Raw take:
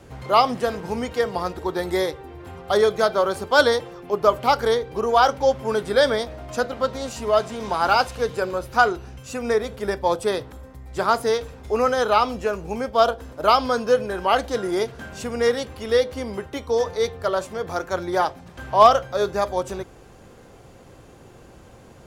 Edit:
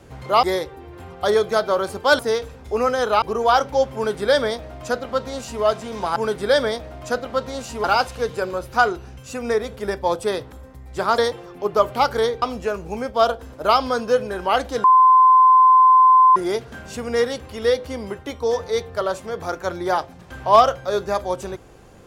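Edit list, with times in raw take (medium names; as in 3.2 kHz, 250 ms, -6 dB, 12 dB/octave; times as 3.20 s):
0.43–1.90 s: delete
3.66–4.90 s: swap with 11.18–12.21 s
5.63–7.31 s: copy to 7.84 s
14.63 s: add tone 1.03 kHz -8.5 dBFS 1.52 s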